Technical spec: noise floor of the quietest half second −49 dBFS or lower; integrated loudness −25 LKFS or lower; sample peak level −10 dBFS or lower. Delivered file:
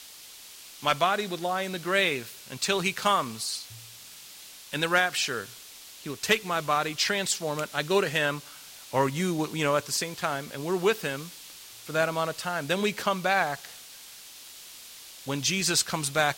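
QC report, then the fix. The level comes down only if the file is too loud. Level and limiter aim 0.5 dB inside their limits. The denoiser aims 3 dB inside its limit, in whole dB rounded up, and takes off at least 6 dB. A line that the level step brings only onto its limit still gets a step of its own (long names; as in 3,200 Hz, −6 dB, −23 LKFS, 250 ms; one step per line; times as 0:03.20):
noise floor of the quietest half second −47 dBFS: out of spec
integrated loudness −27.0 LKFS: in spec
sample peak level −9.5 dBFS: out of spec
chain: broadband denoise 6 dB, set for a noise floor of −47 dBFS
brickwall limiter −10.5 dBFS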